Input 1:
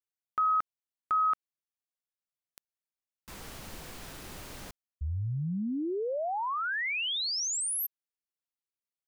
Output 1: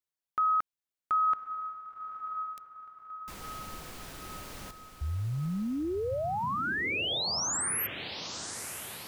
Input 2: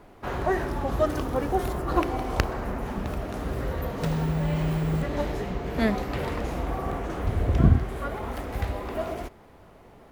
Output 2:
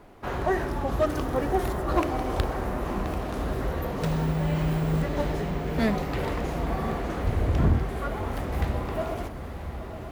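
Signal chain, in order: hard clip -16 dBFS; diffused feedback echo 1.017 s, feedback 51%, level -9 dB

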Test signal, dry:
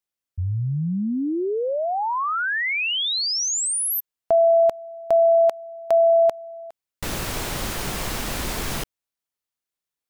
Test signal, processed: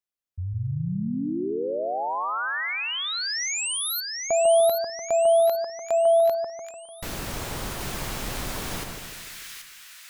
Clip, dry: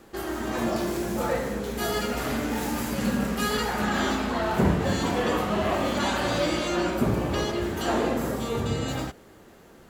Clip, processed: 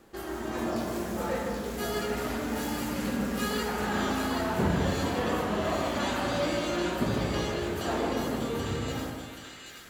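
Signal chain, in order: split-band echo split 1500 Hz, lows 0.148 s, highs 0.78 s, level -4 dB; gain -5.5 dB

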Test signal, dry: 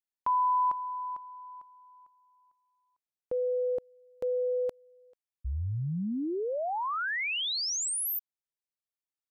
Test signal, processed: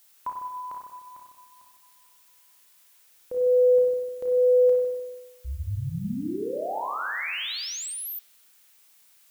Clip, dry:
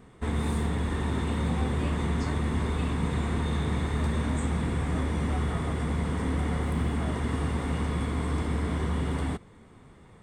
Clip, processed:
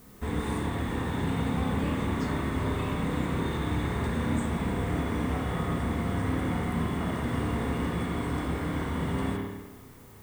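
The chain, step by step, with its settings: added noise blue -56 dBFS; spring tank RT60 1.2 s, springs 30/50 ms, chirp 55 ms, DRR -1 dB; gain -2.5 dB

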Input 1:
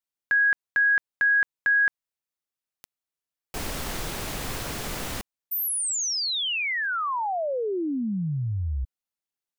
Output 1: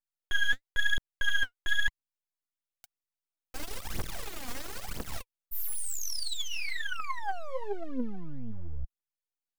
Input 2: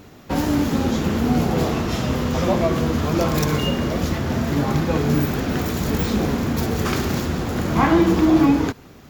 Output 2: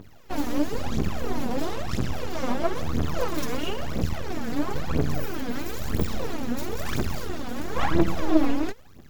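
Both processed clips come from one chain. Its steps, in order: half-wave rectifier; phaser 1 Hz, delay 4.3 ms, feedback 73%; gain -7.5 dB

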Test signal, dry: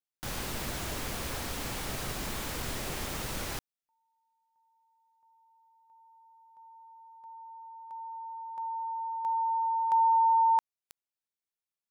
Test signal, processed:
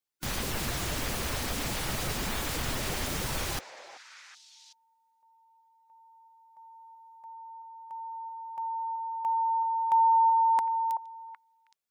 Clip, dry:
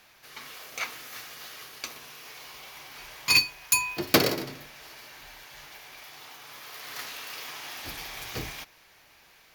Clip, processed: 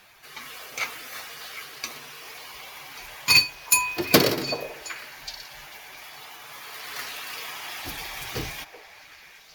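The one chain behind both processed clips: bin magnitudes rounded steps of 15 dB; delay with a stepping band-pass 0.379 s, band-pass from 690 Hz, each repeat 1.4 oct, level -8 dB; gain +4 dB

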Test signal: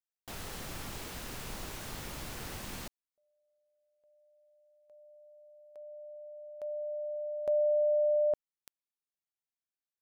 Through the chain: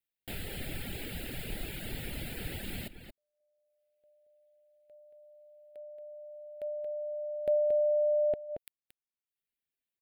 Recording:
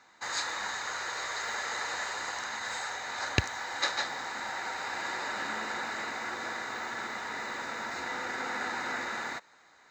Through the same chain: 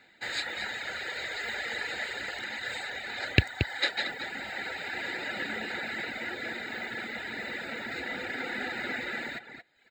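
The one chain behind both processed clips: fixed phaser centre 2600 Hz, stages 4; outdoor echo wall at 39 m, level -6 dB; reverb removal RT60 0.81 s; gain +6 dB

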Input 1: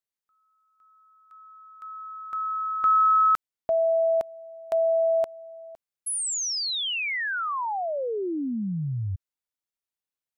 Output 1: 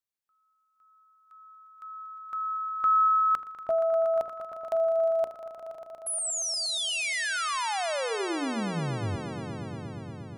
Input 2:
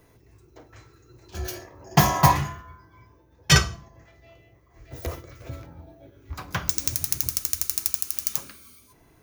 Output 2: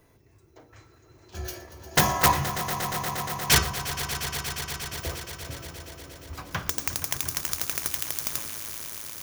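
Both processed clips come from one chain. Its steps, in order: wrapped overs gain 8 dB; notches 60/120/180/240/300/360/420/480 Hz; swelling echo 0.118 s, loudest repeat 5, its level -13.5 dB; gain -2.5 dB

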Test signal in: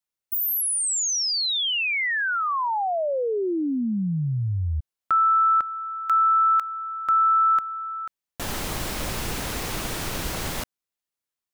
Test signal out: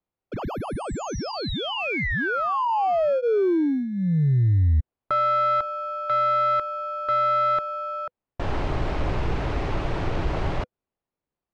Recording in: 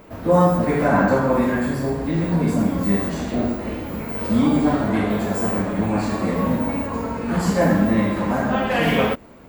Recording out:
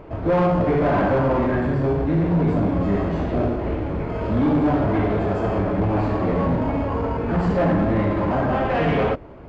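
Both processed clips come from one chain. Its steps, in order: bell 220 Hz -13 dB 0.48 oct; notch 500 Hz, Q 13; in parallel at -7 dB: sample-and-hold 23×; on the sum: soft clip -19 dBFS; tape spacing loss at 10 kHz 38 dB; gain +6 dB

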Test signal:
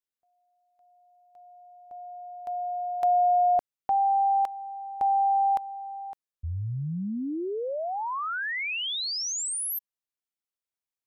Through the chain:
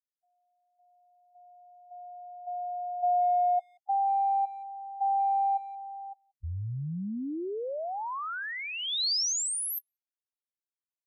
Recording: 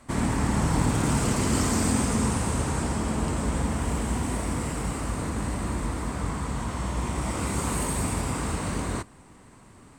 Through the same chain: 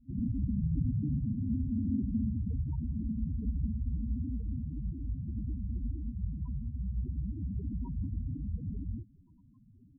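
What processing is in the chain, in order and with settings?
loudest bins only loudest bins 4; resonant high shelf 3400 Hz +8.5 dB, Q 1.5; speakerphone echo 0.18 s, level -29 dB; gain -3 dB

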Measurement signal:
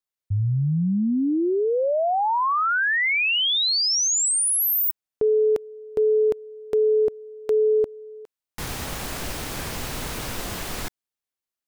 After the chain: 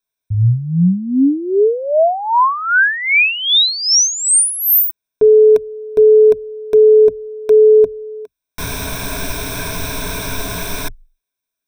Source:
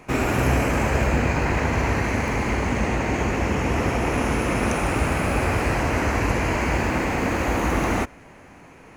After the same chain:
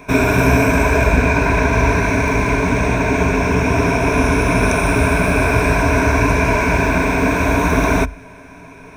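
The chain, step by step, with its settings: ripple EQ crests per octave 1.6, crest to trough 14 dB; gain +5 dB

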